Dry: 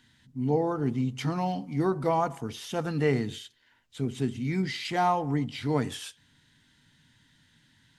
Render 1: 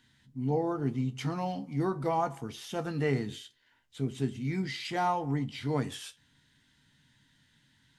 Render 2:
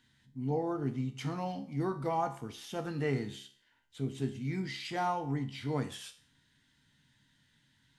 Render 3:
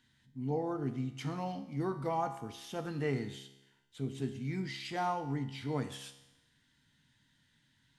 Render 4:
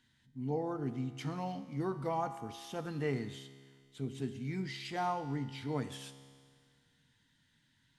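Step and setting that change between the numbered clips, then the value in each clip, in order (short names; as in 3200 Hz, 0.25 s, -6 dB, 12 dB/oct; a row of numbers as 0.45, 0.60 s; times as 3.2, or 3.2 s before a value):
resonator, decay: 0.15, 0.46, 0.95, 2 s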